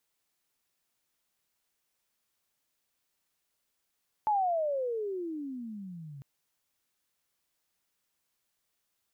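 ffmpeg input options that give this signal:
-f lavfi -i "aevalsrc='pow(10,(-23.5-19*t/1.95)/20)*sin(2*PI*875*1.95/(-32.5*log(2)/12)*(exp(-32.5*log(2)/12*t/1.95)-1))':d=1.95:s=44100"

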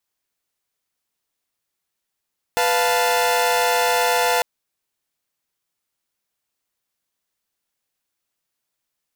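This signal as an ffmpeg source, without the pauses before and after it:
-f lavfi -i "aevalsrc='0.119*((2*mod(493.88*t,1)-1)+(2*mod(698.46*t,1)-1)+(2*mod(880*t,1)-1))':d=1.85:s=44100"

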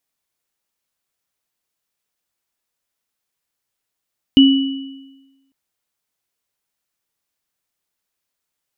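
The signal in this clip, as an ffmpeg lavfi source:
-f lavfi -i "aevalsrc='0.631*pow(10,-3*t/1.16)*sin(2*PI*271*t)+0.251*pow(10,-3*t/1.02)*sin(2*PI*2950*t)':d=1.15:s=44100"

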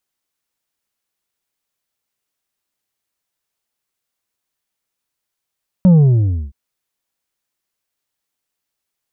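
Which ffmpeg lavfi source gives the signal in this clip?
-f lavfi -i "aevalsrc='0.501*clip((0.67-t)/0.61,0,1)*tanh(1.78*sin(2*PI*190*0.67/log(65/190)*(exp(log(65/190)*t/0.67)-1)))/tanh(1.78)':d=0.67:s=44100"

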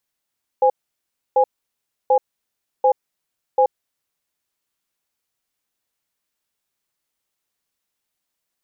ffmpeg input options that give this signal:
-f lavfi -i "aevalsrc='0.2*(sin(2*PI*516*t)+sin(2*PI*824*t))*clip(min(mod(t,0.74),0.08-mod(t,0.74))/0.005,0,1)':d=3.47:s=44100"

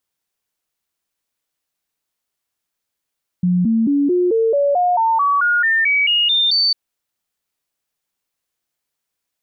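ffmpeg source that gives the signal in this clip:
-f lavfi -i "aevalsrc='0.237*clip(min(mod(t,0.22),0.22-mod(t,0.22))/0.005,0,1)*sin(2*PI*179*pow(2,floor(t/0.22)/3)*mod(t,0.22))':d=3.3:s=44100"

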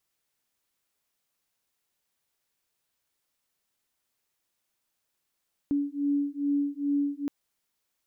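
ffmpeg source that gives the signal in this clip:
-f lavfi -i "aevalsrc='0.0398*(sin(2*PI*284*t)+sin(2*PI*286.4*t))':d=1.57:s=44100"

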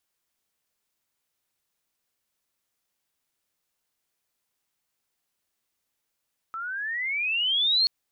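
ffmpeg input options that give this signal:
-f lavfi -i "aevalsrc='pow(10,(-18+13*(t/1.33-1))/20)*sin(2*PI*1300*1.33/(21*log(2)/12)*(exp(21*log(2)/12*t/1.33)-1))':d=1.33:s=44100"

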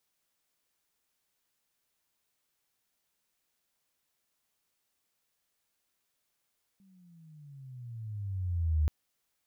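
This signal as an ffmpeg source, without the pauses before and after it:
-f lavfi -i "aevalsrc='pow(10,(-22.5+36.5*(t/2.08-1))/20)*sin(2*PI*198*2.08/(-17*log(2)/12)*(exp(-17*log(2)/12*t/2.08)-1))':d=2.08:s=44100"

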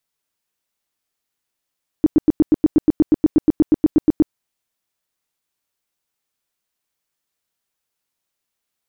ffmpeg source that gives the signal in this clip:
-f lavfi -i "aevalsrc='0.422*sin(2*PI*308*mod(t,0.12))*lt(mod(t,0.12),7/308)':d=2.28:s=44100"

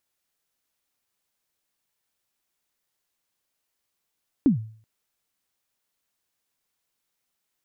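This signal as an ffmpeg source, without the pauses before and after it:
-f lavfi -i "aevalsrc='0.266*pow(10,-3*t/0.48)*sin(2*PI*(310*0.12/log(110/310)*(exp(log(110/310)*min(t,0.12)/0.12)-1)+110*max(t-0.12,0)))':d=0.38:s=44100"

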